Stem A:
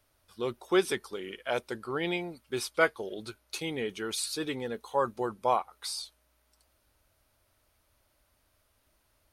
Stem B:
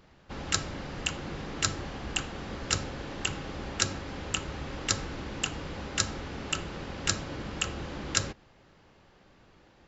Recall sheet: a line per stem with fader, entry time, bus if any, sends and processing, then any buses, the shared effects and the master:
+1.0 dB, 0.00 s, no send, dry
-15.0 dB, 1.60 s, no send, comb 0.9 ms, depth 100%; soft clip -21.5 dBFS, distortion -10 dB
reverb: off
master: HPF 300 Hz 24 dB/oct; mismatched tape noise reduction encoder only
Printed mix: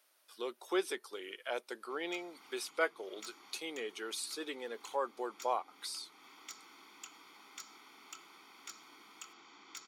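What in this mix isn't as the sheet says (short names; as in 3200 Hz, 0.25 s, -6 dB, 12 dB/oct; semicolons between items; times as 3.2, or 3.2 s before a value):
stem A +1.0 dB -> -7.5 dB; stem B -15.0 dB -> -24.0 dB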